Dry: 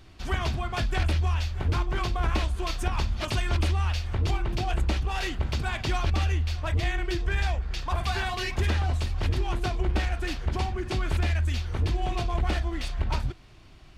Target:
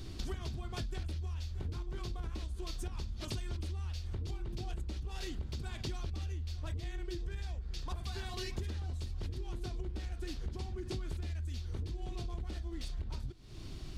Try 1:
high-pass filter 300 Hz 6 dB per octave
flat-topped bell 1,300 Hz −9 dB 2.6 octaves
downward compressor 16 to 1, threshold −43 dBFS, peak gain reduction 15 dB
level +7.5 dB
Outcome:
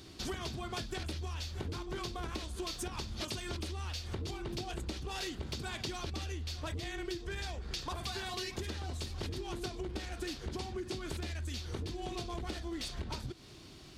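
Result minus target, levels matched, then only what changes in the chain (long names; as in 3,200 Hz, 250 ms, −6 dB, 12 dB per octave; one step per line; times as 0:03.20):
250 Hz band +3.0 dB
remove: high-pass filter 300 Hz 6 dB per octave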